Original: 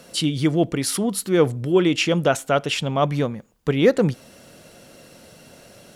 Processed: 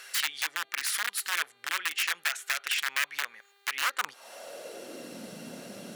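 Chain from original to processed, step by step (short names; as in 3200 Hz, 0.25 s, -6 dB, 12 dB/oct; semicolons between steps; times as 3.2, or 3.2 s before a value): compressor 8:1, threshold -28 dBFS, peak gain reduction 17.5 dB; wrapped overs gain 24 dB; high-pass sweep 1700 Hz -> 210 Hz, 3.77–5.21; buzz 400 Hz, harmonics 11, -67 dBFS -1 dB/oct; gain +1.5 dB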